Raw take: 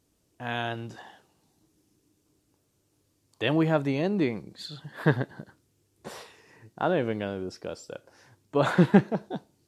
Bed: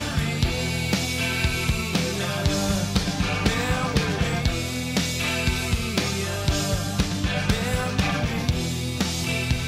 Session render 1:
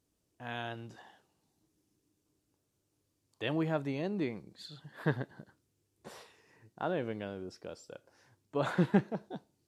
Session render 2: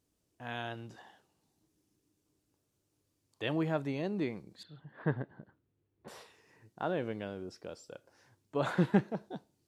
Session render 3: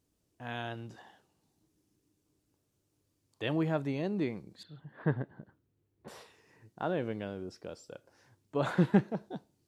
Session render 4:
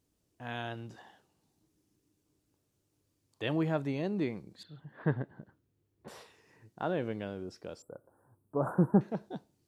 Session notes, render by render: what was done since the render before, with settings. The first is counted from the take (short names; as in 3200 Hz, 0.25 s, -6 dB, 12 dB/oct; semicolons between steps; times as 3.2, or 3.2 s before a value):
gain -8.5 dB
4.63–6.08 air absorption 490 m
low shelf 340 Hz +3 dB
7.82–9.01 inverse Chebyshev band-stop 2100–6200 Hz